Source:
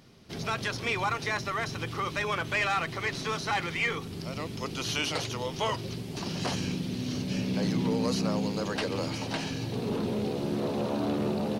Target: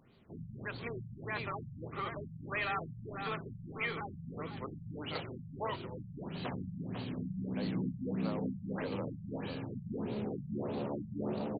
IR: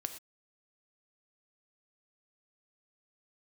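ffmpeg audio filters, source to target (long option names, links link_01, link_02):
-filter_complex "[0:a]asplit=2[link_01][link_02];[link_02]adelay=497,lowpass=frequency=4200:poles=1,volume=-6dB,asplit=2[link_03][link_04];[link_04]adelay=497,lowpass=frequency=4200:poles=1,volume=0.32,asplit=2[link_05][link_06];[link_06]adelay=497,lowpass=frequency=4200:poles=1,volume=0.32,asplit=2[link_07][link_08];[link_08]adelay=497,lowpass=frequency=4200:poles=1,volume=0.32[link_09];[link_01][link_03][link_05][link_07][link_09]amix=inputs=5:normalize=0,afftfilt=real='re*lt(b*sr/1024,200*pow(4800/200,0.5+0.5*sin(2*PI*1.6*pts/sr)))':imag='im*lt(b*sr/1024,200*pow(4800/200,0.5+0.5*sin(2*PI*1.6*pts/sr)))':win_size=1024:overlap=0.75,volume=-7.5dB"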